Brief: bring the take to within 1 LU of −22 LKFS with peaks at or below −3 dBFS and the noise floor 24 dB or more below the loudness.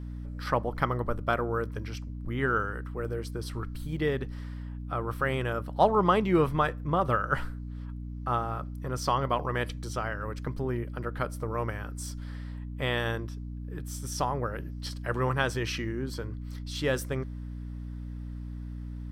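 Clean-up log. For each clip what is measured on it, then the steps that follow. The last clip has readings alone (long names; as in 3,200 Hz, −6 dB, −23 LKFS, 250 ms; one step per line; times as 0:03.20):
mains hum 60 Hz; hum harmonics up to 300 Hz; level of the hum −35 dBFS; integrated loudness −31.5 LKFS; sample peak −9.5 dBFS; target loudness −22.0 LKFS
→ hum removal 60 Hz, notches 5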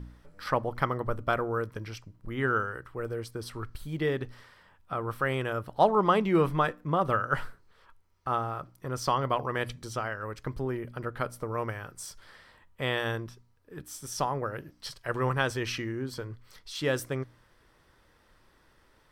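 mains hum none found; integrated loudness −31.0 LKFS; sample peak −10.0 dBFS; target loudness −22.0 LKFS
→ level +9 dB
brickwall limiter −3 dBFS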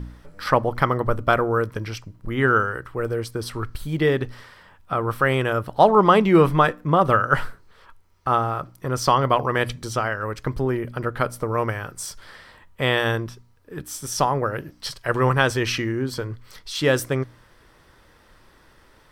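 integrated loudness −22.0 LKFS; sample peak −3.0 dBFS; background noise floor −55 dBFS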